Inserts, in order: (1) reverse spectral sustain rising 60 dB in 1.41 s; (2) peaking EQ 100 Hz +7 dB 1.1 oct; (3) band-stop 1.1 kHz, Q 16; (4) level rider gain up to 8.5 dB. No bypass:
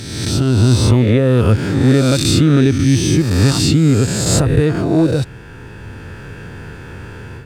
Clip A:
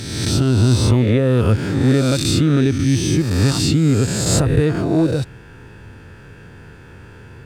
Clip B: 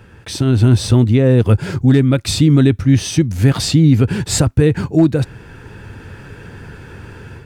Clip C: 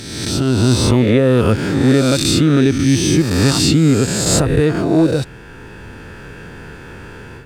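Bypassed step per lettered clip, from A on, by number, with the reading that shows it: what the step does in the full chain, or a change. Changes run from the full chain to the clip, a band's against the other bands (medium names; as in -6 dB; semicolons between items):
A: 4, momentary loudness spread change -18 LU; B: 1, 125 Hz band +3.0 dB; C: 2, 125 Hz band -4.5 dB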